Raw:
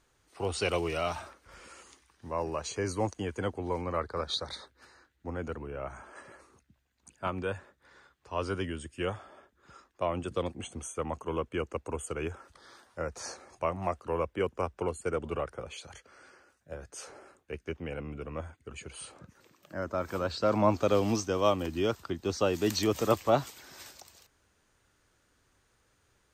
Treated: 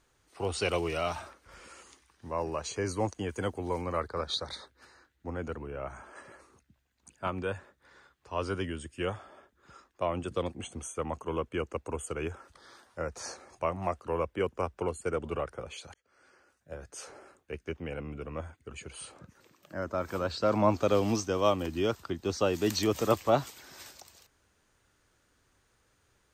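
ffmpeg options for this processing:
-filter_complex "[0:a]asettb=1/sr,asplit=3[a][b][c];[a]atrim=end=3.294[d];[b]atrim=start=3.29:end=4.08,asetpts=PTS-STARTPTS,afade=t=in:d=0.004:c=qsin,afade=t=out:st=0.786:d=0.004:c=qsin,highshelf=f=7.6k:g=11[e];[c]atrim=start=4.076[f];[d][e]acrossfade=d=0.004:c1=hsin:c2=qsin[g];[g][f]acrossfade=d=0.004:c1=qsin:c2=hsin,asplit=2[h][i];[h]atrim=end=15.94,asetpts=PTS-STARTPTS,afade=t=out:st=15.936:d=0.004:c=hsin[j];[i]atrim=start=15.94,asetpts=PTS-STARTPTS,afade=t=in:d=1.05:c=qsin[k];[j][k]concat=n=2:v=0:a=1"

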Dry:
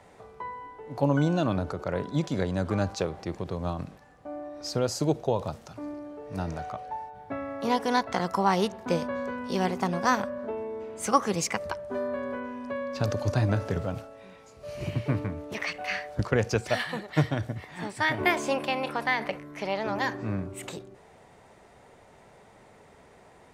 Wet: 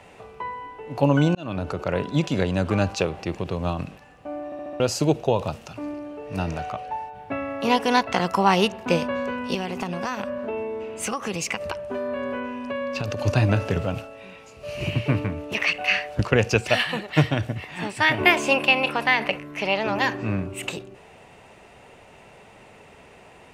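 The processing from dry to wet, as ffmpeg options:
-filter_complex "[0:a]asettb=1/sr,asplit=3[a][b][c];[a]atrim=end=9.544[d];[b]atrim=start=9.54:end=13.19,asetpts=PTS-STARTPTS,afade=t=in:d=0.004:c=qsin,afade=t=out:st=3.646:d=0.004:c=qsin,acompressor=threshold=-29dB:ratio=6:attack=3.2:release=140:knee=1:detection=peak[e];[c]atrim=start=13.186[f];[d][e]acrossfade=d=0.004:c1=hsin:c2=qsin[g];[g][f]acrossfade=d=0.004:c1=qsin:c2=hsin,asplit=7[h][i][j][k][l][m][n];[h]atrim=end=1.35,asetpts=PTS-STARTPTS,afade=t=out:st=1.346:d=0.004:c=hsin[o];[i]atrim=start=1.35:end=4.522,asetpts=PTS-STARTPTS,afade=t=in:d=0.4[p];[j]atrim=start=4.448:end=4.522[q];[k]atrim=start=4.448:end=4.522[r];[l]atrim=start=4.448:end=4.522[s];[m]atrim=start=4.448:end=4.522[t];[n]atrim=start=4.798[u];[o][p]concat=n=2:v=0:a=1[v];[v][q]acrossfade=d=0.004:c1=hsin:c2=hsin[w];[w][r]acrossfade=d=0.004:c1=hsin:c2=hsin[x];[x][s]acrossfade=d=0.004:c1=hsin:c2=hsin[y];[y][t]acrossfade=d=0.004:c1=hsin:c2=hsin[z];[z][u]acrossfade=d=0.004:c1=hsin:c2=hsin,equalizer=f=2.7k:w=4.1:g=12.5,volume=5dB"

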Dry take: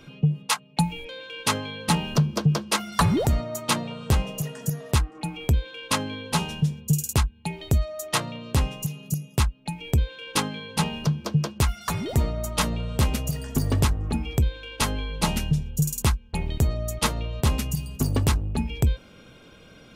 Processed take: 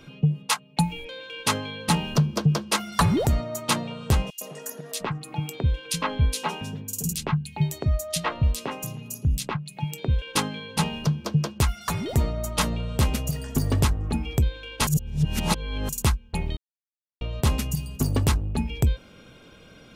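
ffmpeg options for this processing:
-filter_complex "[0:a]asettb=1/sr,asplit=3[a][b][c];[a]atrim=end=4.304[d];[b]atrim=start=4.3:end=10.22,asetpts=PTS-STARTPTS,afade=t=in:d=0.004:c=qsin,afade=t=out:st=5.916:d=0.004:c=qsin,acrossover=split=230|2900[e][f][g];[f]adelay=110[h];[e]adelay=700[i];[i][h][g]amix=inputs=3:normalize=0,atrim=end_sample=261072[j];[c]atrim=start=10.216[k];[d][j]acrossfade=d=0.004:c1=hsin:c2=qsin[l];[l][k]acrossfade=d=0.004:c1=qsin:c2=hsin,asplit=5[m][n][o][p][q];[m]atrim=end=14.872[r];[n]atrim=start=14.868:end=15.892,asetpts=PTS-STARTPTS,areverse[s];[o]atrim=start=15.888:end=16.57,asetpts=PTS-STARTPTS,afade=t=out:st=0.678:d=0.004:c=hsin[t];[p]atrim=start=16.57:end=17.21,asetpts=PTS-STARTPTS,volume=0[u];[q]atrim=start=17.21,asetpts=PTS-STARTPTS,afade=t=in:d=0.004:c=hsin[v];[r][s]acrossfade=d=0.004:c1=hsin:c2=hsin[w];[t][u][v]concat=n=3:v=0:a=1[x];[w][x]acrossfade=d=0.004:c1=hsin:c2=hsin"

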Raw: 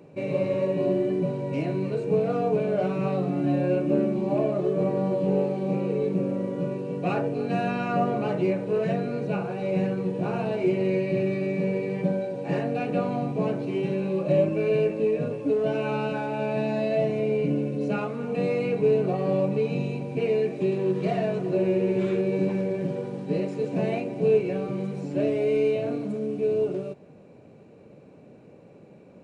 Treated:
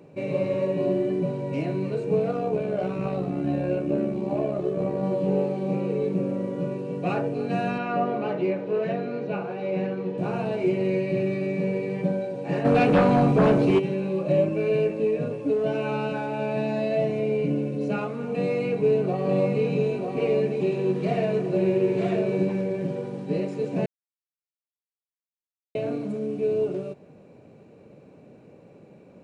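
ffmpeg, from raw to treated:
-filter_complex "[0:a]asettb=1/sr,asplit=3[a][b][c];[a]atrim=end=2.314[d];[b]atrim=start=2.31:end=5.03,asetpts=PTS-STARTPTS,afade=t=in:d=0.004:c=qsin,afade=t=out:st=2.716:d=0.004:c=qsin,tremolo=f=67:d=0.462[e];[c]atrim=start=5.026[f];[d][e]acrossfade=d=0.004:c1=hsin:c2=qsin[g];[g][f]acrossfade=d=0.004:c1=qsin:c2=hsin,asettb=1/sr,asplit=3[h][i][j];[h]atrim=end=7.784[k];[i]atrim=start=7.78:end=10.18,asetpts=PTS-STARTPTS,afade=t=in:d=0.004:c=qsin,afade=t=out:st=2.396:d=0.004:c=qsin,highpass=200,lowpass=4.1k[l];[j]atrim=start=10.176[m];[k][l]acrossfade=d=0.004:c1=hsin:c2=qsin[n];[n][m]acrossfade=d=0.004:c1=qsin:c2=hsin,asplit=3[o][p][q];[o]afade=t=out:st=12.64:d=0.02[r];[p]aeval=exprs='0.211*sin(PI/2*2.24*val(0)/0.211)':c=same,afade=t=in:st=12.64:d=0.02,afade=t=out:st=13.78:d=0.02[s];[q]afade=t=in:st=13.78:d=0.02[t];[r][s][t]amix=inputs=3:normalize=0,asettb=1/sr,asplit=3[u][v][w];[u]atrim=end=18.304[x];[v]atrim=start=18.3:end=22.43,asetpts=PTS-STARTPTS,afade=t=in:d=0.004:c=qsin,afade=t=out:st=4.126:d=0.004:c=qsin,aecho=1:1:944:0.596,atrim=end_sample=182133[y];[w]atrim=start=22.426[z];[x][y]acrossfade=d=0.004:c1=hsin:c2=qsin[aa];[aa][z]acrossfade=d=0.004:c1=qsin:c2=hsin,asplit=3[ab][ac][ad];[ab]atrim=end=23.86,asetpts=PTS-STARTPTS,afade=t=out:st=23.856:d=0.004:c=hsin[ae];[ac]atrim=start=23.86:end=25.75,asetpts=PTS-STARTPTS,volume=0[af];[ad]atrim=start=25.75,asetpts=PTS-STARTPTS,afade=t=in:d=0.004:c=hsin[ag];[ae][af][ag]concat=n=3:v=0:a=1"

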